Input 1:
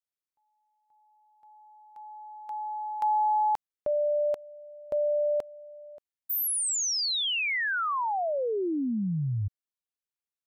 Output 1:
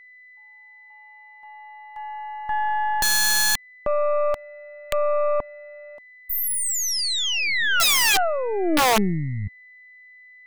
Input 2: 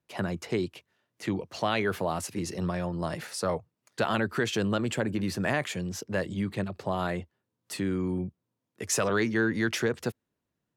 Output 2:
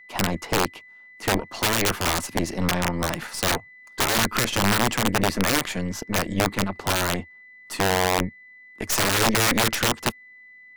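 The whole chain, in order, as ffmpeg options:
ffmpeg -i in.wav -af "equalizer=frequency=125:width_type=o:width=1:gain=-4,equalizer=frequency=250:width_type=o:width=1:gain=8,equalizer=frequency=500:width_type=o:width=1:gain=-4,equalizer=frequency=1000:width_type=o:width=1:gain=10,aeval=exprs='val(0)+0.00355*sin(2*PI*2000*n/s)':channel_layout=same,aeval=exprs='0.422*(cos(1*acos(clip(val(0)/0.422,-1,1)))-cos(1*PI/2))+0.00473*(cos(4*acos(clip(val(0)/0.422,-1,1)))-cos(4*PI/2))+0.0133*(cos(5*acos(clip(val(0)/0.422,-1,1)))-cos(5*PI/2))+0.00237*(cos(6*acos(clip(val(0)/0.422,-1,1)))-cos(6*PI/2))+0.075*(cos(8*acos(clip(val(0)/0.422,-1,1)))-cos(8*PI/2))':channel_layout=same,aeval=exprs='(mod(4.73*val(0)+1,2)-1)/4.73':channel_layout=same,volume=2dB" out.wav

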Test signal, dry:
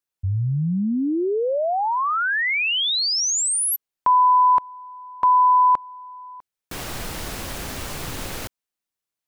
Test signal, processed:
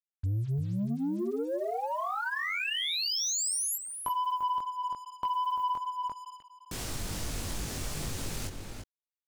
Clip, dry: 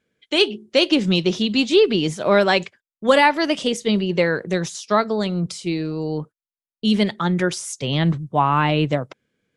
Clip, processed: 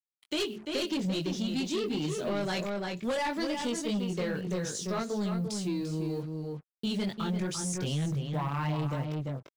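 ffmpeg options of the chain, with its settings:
ffmpeg -i in.wav -filter_complex "[0:a]equalizer=frequency=7300:width=0.5:gain=10,flanger=delay=19.5:depth=2.4:speed=2.5,lowshelf=frequency=410:gain=10.5,acrusher=bits=6:mix=0:aa=0.5,asoftclip=type=tanh:threshold=-13.5dB,asplit=2[link_01][link_02];[link_02]adelay=344,volume=-6dB,highshelf=frequency=4000:gain=-7.74[link_03];[link_01][link_03]amix=inputs=2:normalize=0,acompressor=threshold=-20dB:ratio=6:attack=18:release=365:knee=6,volume=-8dB" out.wav

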